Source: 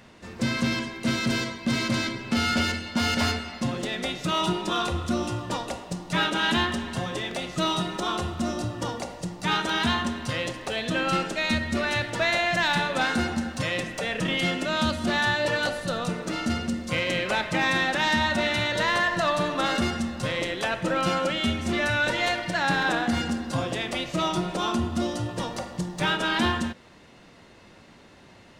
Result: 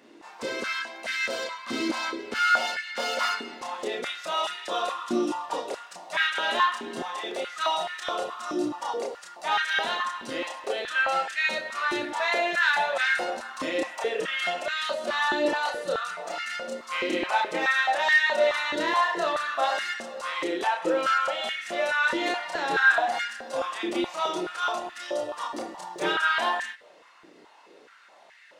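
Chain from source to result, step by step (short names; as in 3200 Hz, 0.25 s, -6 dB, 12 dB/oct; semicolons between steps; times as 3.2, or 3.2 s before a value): chorus voices 6, 0.16 Hz, delay 30 ms, depth 3.9 ms; stepped high-pass 4.7 Hz 330–1800 Hz; gain -1.5 dB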